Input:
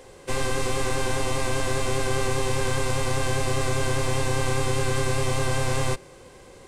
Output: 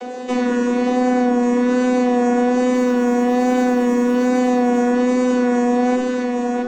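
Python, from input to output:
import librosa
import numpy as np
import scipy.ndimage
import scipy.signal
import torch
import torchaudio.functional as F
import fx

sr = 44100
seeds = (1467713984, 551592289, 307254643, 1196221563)

p1 = fx.chord_vocoder(x, sr, chord='bare fifth', root=59)
p2 = fx.high_shelf(p1, sr, hz=4400.0, db=-6.0, at=(0.89, 1.43))
p3 = fx.quant_float(p2, sr, bits=4, at=(2.73, 4.25))
p4 = fx.cheby_harmonics(p3, sr, harmonics=(6, 7), levels_db=(-33, -36), full_scale_db=-15.0)
p5 = p4 + fx.echo_single(p4, sr, ms=664, db=-6.0, dry=0)
p6 = fx.room_shoebox(p5, sr, seeds[0], volume_m3=730.0, walls='furnished', distance_m=1.9)
p7 = fx.vibrato(p6, sr, rate_hz=1.2, depth_cents=27.0)
p8 = p7 + 0.57 * np.pad(p7, (int(4.0 * sr / 1000.0), 0))[:len(p7)]
y = fx.env_flatten(p8, sr, amount_pct=50)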